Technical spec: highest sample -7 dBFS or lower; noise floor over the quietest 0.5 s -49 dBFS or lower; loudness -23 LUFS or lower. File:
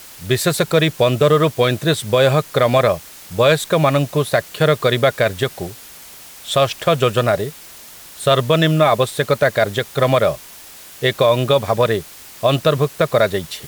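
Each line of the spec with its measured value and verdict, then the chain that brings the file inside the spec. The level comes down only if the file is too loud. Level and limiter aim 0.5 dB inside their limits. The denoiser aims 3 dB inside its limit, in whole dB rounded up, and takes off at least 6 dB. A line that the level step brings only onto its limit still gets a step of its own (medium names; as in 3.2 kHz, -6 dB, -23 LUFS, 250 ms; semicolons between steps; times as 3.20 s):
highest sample -3.5 dBFS: fail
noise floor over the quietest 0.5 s -39 dBFS: fail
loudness -17.0 LUFS: fail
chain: noise reduction 7 dB, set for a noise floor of -39 dBFS; trim -6.5 dB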